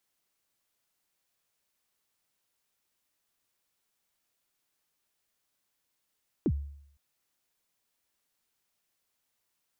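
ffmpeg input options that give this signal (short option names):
-f lavfi -i "aevalsrc='0.0891*pow(10,-3*t/0.69)*sin(2*PI*(400*0.057/log(71/400)*(exp(log(71/400)*min(t,0.057)/0.057)-1)+71*max(t-0.057,0)))':d=0.51:s=44100"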